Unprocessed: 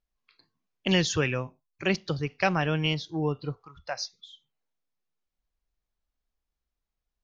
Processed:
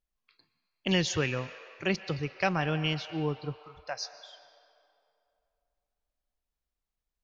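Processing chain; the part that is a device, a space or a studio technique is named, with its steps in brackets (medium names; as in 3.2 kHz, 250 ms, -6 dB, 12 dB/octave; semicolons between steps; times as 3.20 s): filtered reverb send (on a send: high-pass 540 Hz 24 dB/octave + low-pass 5.2 kHz 12 dB/octave + reverberation RT60 2.7 s, pre-delay 115 ms, DRR 11.5 dB); on the sum: trim -3 dB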